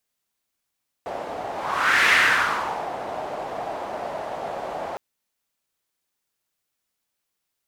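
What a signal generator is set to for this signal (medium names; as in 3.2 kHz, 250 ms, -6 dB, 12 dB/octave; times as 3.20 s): whoosh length 3.91 s, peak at 1.03 s, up 0.64 s, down 0.88 s, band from 700 Hz, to 1.9 kHz, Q 3.1, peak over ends 14 dB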